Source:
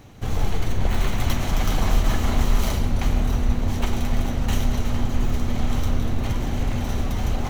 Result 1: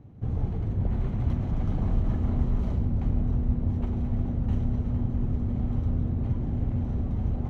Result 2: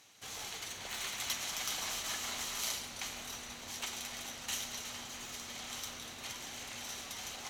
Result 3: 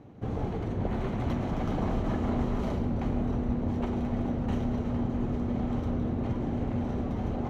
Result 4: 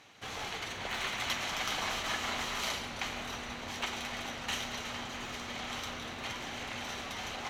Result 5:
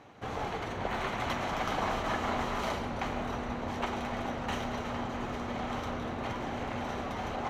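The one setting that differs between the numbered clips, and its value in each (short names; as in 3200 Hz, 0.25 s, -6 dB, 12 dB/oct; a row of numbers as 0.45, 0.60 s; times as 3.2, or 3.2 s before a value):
band-pass, frequency: 120, 7000, 300, 2800, 1000 Hz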